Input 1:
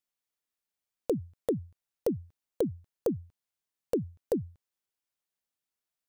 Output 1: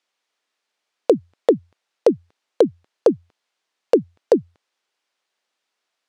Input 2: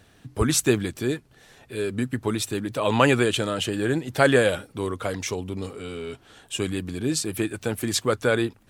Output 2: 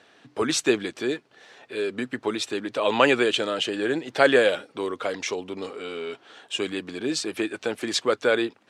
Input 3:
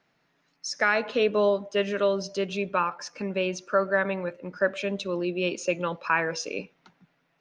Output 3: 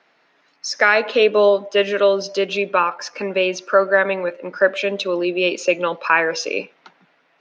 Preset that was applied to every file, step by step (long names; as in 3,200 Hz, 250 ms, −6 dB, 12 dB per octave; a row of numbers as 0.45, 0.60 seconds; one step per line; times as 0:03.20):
band-pass filter 370–4,900 Hz
dynamic equaliser 1,100 Hz, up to −4 dB, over −36 dBFS, Q 0.72
normalise the peak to −2 dBFS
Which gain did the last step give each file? +17.0, +4.0, +12.0 decibels